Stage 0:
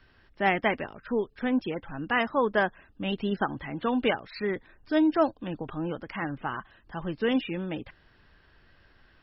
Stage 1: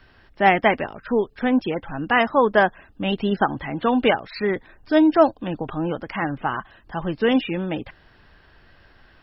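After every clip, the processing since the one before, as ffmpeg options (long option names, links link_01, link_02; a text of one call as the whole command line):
ffmpeg -i in.wav -af "equalizer=frequency=740:width=2:gain=3.5,volume=6.5dB" out.wav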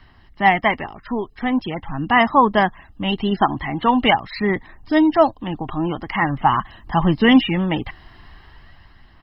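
ffmpeg -i in.wav -af "aecho=1:1:1:0.58,aphaser=in_gain=1:out_gain=1:delay=2.9:decay=0.27:speed=0.43:type=sinusoidal,dynaudnorm=framelen=160:gausssize=11:maxgain=10dB,volume=-1dB" out.wav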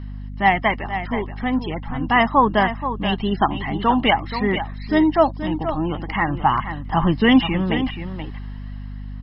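ffmpeg -i in.wav -af "aecho=1:1:478:0.316,aeval=exprs='val(0)+0.0355*(sin(2*PI*50*n/s)+sin(2*PI*2*50*n/s)/2+sin(2*PI*3*50*n/s)/3+sin(2*PI*4*50*n/s)/4+sin(2*PI*5*50*n/s)/5)':channel_layout=same,volume=-1.5dB" out.wav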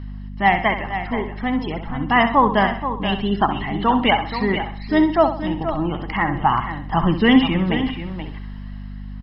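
ffmpeg -i in.wav -af "aecho=1:1:65|130|195|260:0.335|0.124|0.0459|0.017" out.wav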